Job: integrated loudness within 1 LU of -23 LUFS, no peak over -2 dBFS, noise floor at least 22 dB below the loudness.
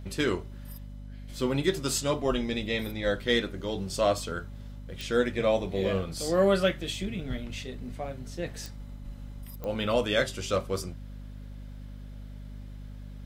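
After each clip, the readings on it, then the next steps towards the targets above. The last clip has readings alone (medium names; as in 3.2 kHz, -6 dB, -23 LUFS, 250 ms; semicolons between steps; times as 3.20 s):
clicks found 4; hum 50 Hz; highest harmonic 250 Hz; hum level -39 dBFS; loudness -29.5 LUFS; peak level -11.0 dBFS; loudness target -23.0 LUFS
-> de-click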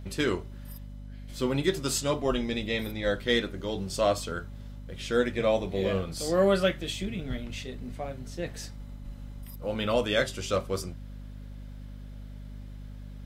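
clicks found 0; hum 50 Hz; highest harmonic 250 Hz; hum level -39 dBFS
-> hum notches 50/100/150/200/250 Hz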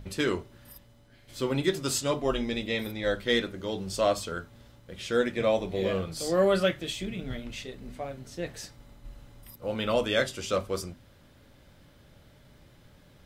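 hum not found; loudness -29.5 LUFS; peak level -11.5 dBFS; loudness target -23.0 LUFS
-> trim +6.5 dB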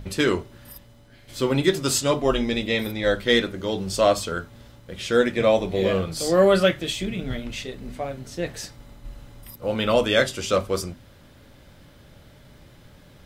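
loudness -23.0 LUFS; peak level -5.0 dBFS; noise floor -51 dBFS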